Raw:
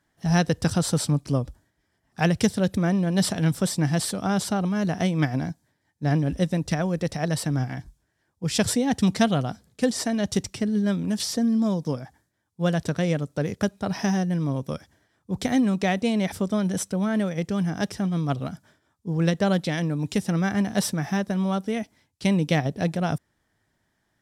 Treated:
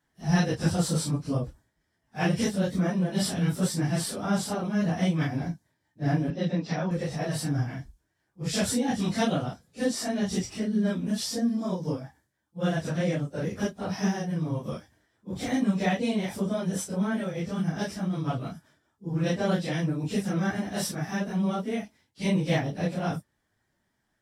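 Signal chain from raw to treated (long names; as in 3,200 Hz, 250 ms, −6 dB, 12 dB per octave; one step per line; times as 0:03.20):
random phases in long frames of 100 ms
0:06.30–0:06.91: Chebyshev band-pass filter 150–5,100 Hz, order 3
level −3.5 dB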